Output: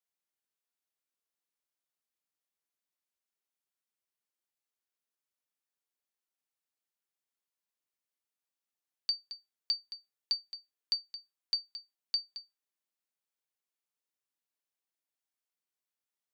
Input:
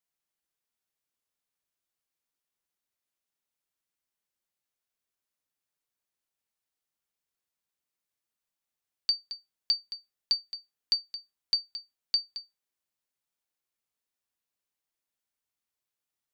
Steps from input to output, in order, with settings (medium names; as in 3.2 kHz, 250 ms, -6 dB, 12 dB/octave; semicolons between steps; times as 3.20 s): high-pass 200 Hz; trim -5 dB